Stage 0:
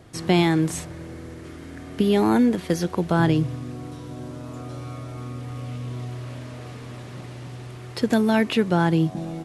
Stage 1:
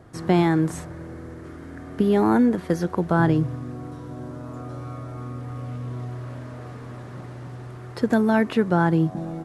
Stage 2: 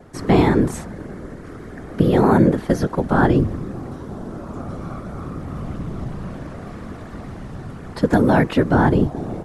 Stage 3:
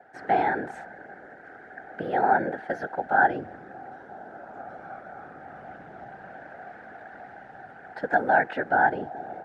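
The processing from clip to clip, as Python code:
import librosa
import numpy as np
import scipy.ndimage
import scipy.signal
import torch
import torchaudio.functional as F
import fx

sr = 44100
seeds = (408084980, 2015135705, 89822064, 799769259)

y1 = fx.high_shelf_res(x, sr, hz=2000.0, db=-7.0, q=1.5)
y2 = fx.vibrato(y1, sr, rate_hz=0.6, depth_cents=21.0)
y2 = fx.whisperise(y2, sr, seeds[0])
y2 = y2 * 10.0 ** (4.0 / 20.0)
y3 = fx.double_bandpass(y2, sr, hz=1100.0, octaves=1.0)
y3 = y3 * 10.0 ** (4.5 / 20.0)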